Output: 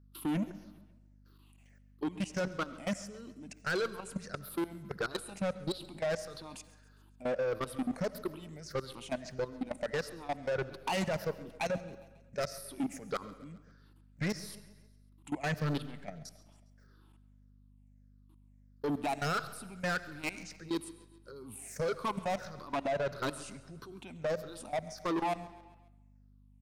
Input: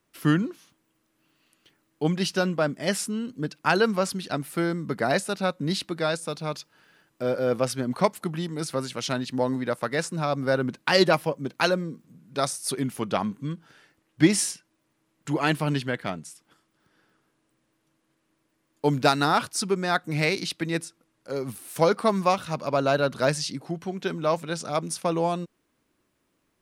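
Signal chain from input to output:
rippled gain that drifts along the octave scale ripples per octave 0.58, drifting −1.6 Hz, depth 18 dB
parametric band 3,100 Hz −4 dB 0.42 octaves
output level in coarse steps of 22 dB
mains hum 50 Hz, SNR 27 dB
soft clipping −25 dBFS, distortion −9 dB
repeating echo 136 ms, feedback 55%, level −20 dB
on a send at −16.5 dB: convolution reverb RT60 1.1 s, pre-delay 45 ms
on the sum: level −3.5 dB

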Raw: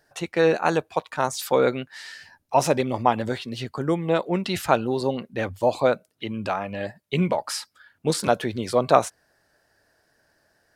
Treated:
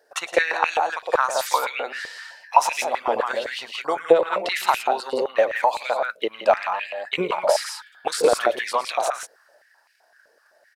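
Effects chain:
brickwall limiter −13 dBFS, peak gain reduction 11.5 dB
loudspeakers that aren't time-aligned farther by 38 metres −10 dB, 58 metres −4 dB
transient designer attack +8 dB, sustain +3 dB
high-pass on a step sequencer 7.8 Hz 470–2,400 Hz
level −1 dB

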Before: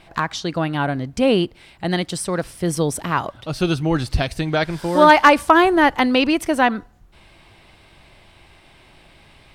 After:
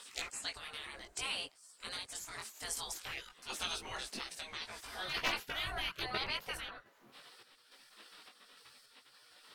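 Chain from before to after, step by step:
gate on every frequency bin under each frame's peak −20 dB weak
parametric band 7,800 Hz +11.5 dB 1 octave, from 0:03.03 +5 dB, from 0:04.85 −5.5 dB
downward compressor 1.5 to 1, threshold −58 dBFS, peak gain reduction 13 dB
multi-voice chorus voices 4, 0.59 Hz, delay 19 ms, depth 4.7 ms
sample-and-hold tremolo
level +8 dB

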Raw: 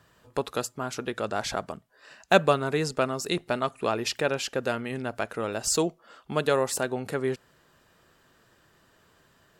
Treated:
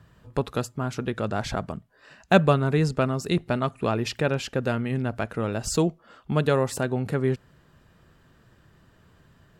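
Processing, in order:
bass and treble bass +12 dB, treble −5 dB

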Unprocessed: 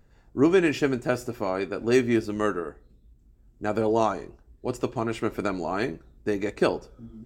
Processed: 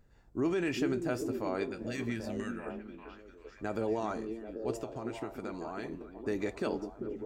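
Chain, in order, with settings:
brickwall limiter −17.5 dBFS, peak gain reduction 9 dB
0:01.70–0:02.66: flat-topped bell 610 Hz −13 dB 2.3 octaves
0:04.73–0:05.92: downward compressor 3 to 1, threshold −33 dBFS, peak gain reduction 7.5 dB
on a send: echo through a band-pass that steps 393 ms, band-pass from 270 Hz, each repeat 0.7 octaves, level −3 dB
on the sum: level −5.5 dB

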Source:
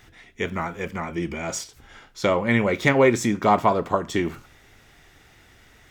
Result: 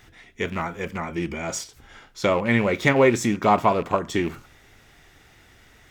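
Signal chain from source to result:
loose part that buzzes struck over −28 dBFS, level −27 dBFS

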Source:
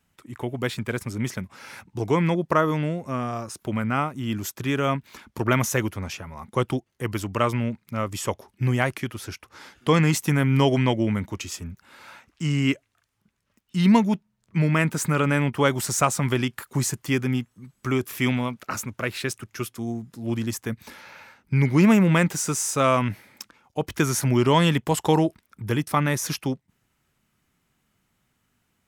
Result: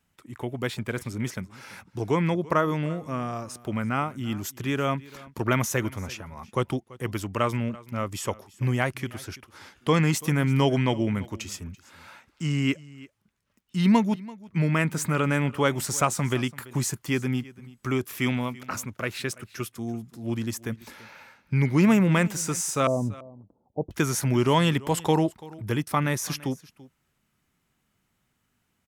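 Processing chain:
0:22.87–0:23.91: Butterworth low-pass 760 Hz 36 dB per octave
single-tap delay 336 ms −20.5 dB
level −2.5 dB

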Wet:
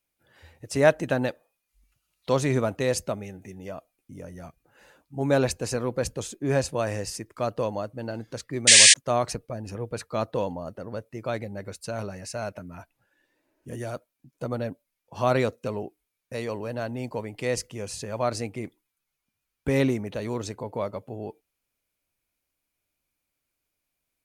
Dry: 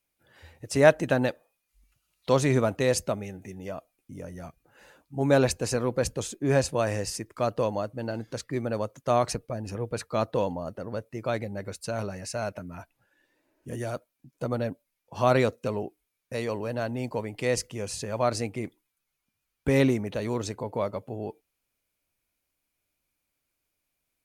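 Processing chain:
sound drawn into the spectrogram noise, 0:08.67–0:08.94, 1,600–9,500 Hz −12 dBFS
level −1 dB

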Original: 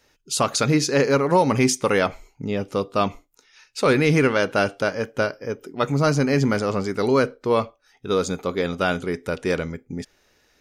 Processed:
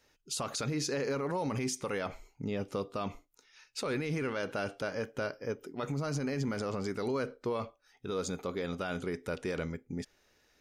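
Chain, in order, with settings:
brickwall limiter −18.5 dBFS, peak gain reduction 11.5 dB
level −7 dB

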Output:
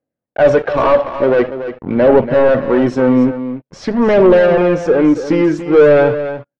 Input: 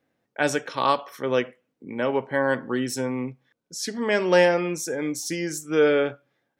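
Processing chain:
parametric band 580 Hz +7 dB 0.41 octaves
leveller curve on the samples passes 5
phase shifter 0.47 Hz, delay 3.8 ms, feedback 35%
head-to-tape spacing loss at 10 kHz 43 dB
single-tap delay 285 ms −11 dB

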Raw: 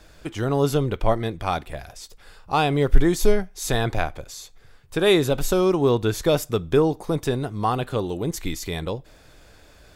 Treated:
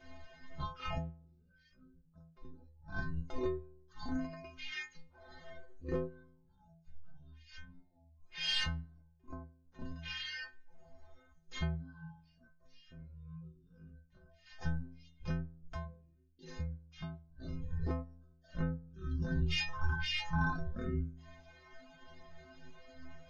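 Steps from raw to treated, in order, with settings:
sub-octave generator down 2 octaves, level +3 dB
gate with flip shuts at −12 dBFS, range −33 dB
soft clipping −18.5 dBFS, distortion −15 dB
stiff-string resonator 180 Hz, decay 0.61 s, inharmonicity 0.03
reverb reduction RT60 0.62 s
wrong playback speed 78 rpm record played at 33 rpm
level +12 dB

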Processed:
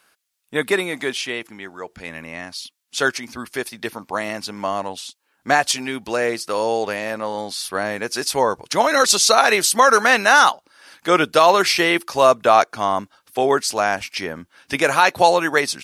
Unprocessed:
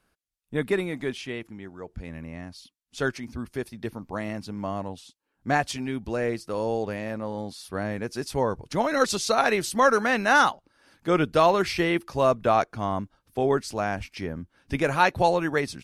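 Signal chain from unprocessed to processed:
high-pass filter 1,300 Hz 6 dB per octave
dynamic equaliser 2,200 Hz, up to −4 dB, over −42 dBFS, Q 0.79
boost into a limiter +16.5 dB
level −1 dB

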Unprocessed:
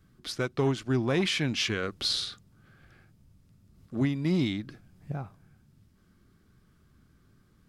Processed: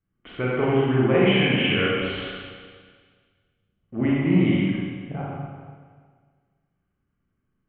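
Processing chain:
notch filter 980 Hz, Q 27
hum removal 70.96 Hz, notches 39
noise gate −52 dBFS, range −21 dB
Chebyshev low-pass with heavy ripple 3,100 Hz, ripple 3 dB
four-comb reverb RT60 1.7 s, combs from 32 ms, DRR −6 dB
level +4 dB

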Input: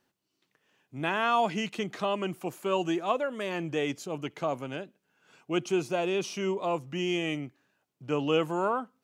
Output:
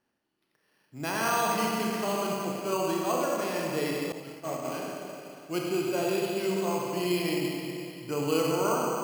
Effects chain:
four-comb reverb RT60 2.9 s, combs from 28 ms, DRR −3 dB
0:04.12–0:04.65: downward expander −23 dBFS
bad sample-rate conversion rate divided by 6×, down filtered, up hold
level −3.5 dB

